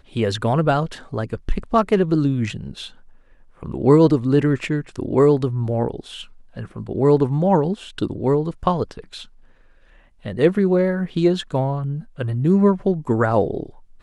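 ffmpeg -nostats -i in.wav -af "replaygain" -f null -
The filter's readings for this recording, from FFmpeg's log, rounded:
track_gain = -0.4 dB
track_peak = 0.544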